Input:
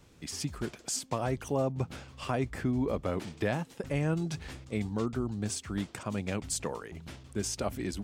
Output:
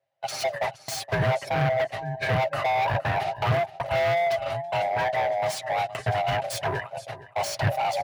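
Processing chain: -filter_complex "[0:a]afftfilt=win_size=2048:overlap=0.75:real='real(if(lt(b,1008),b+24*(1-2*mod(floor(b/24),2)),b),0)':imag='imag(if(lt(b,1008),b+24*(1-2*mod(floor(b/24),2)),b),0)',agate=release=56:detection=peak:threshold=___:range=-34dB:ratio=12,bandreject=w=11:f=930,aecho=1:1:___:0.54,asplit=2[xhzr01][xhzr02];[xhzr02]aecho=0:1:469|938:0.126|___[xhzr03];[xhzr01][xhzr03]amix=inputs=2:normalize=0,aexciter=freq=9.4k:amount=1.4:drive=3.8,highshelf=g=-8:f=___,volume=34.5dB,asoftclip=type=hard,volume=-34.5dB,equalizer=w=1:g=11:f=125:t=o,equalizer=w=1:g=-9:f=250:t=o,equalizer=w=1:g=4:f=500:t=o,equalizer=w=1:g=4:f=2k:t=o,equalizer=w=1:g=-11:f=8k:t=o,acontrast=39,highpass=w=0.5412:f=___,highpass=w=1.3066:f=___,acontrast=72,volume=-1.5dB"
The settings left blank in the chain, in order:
-44dB, 7.5, 0.0189, 9.9k, 64, 64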